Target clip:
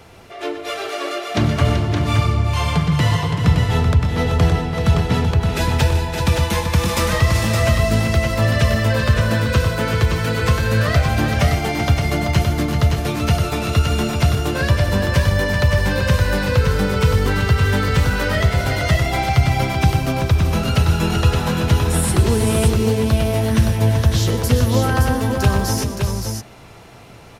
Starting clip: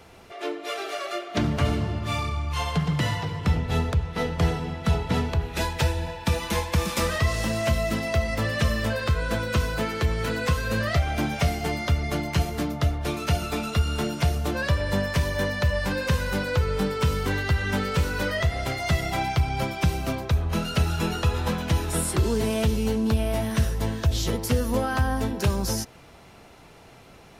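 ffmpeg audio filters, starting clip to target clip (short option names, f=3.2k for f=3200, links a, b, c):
-af "equalizer=f=110:w=3.6:g=7,aecho=1:1:121|383|568:0.237|0.376|0.562,volume=5dB"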